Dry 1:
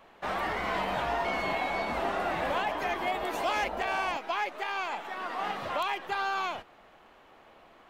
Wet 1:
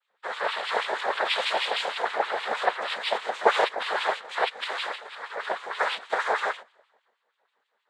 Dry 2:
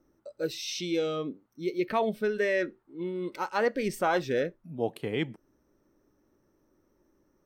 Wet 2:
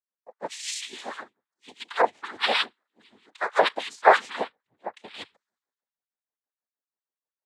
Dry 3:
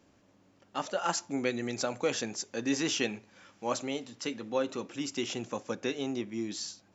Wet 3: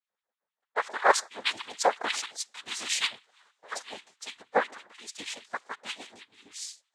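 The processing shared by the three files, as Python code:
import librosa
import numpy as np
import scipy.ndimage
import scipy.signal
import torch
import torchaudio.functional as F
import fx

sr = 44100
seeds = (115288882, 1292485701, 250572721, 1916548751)

y = fx.filter_lfo_highpass(x, sr, shape='sine', hz=6.3, low_hz=660.0, high_hz=2200.0, q=2.8)
y = fx.noise_vocoder(y, sr, seeds[0], bands=6)
y = fx.band_widen(y, sr, depth_pct=70)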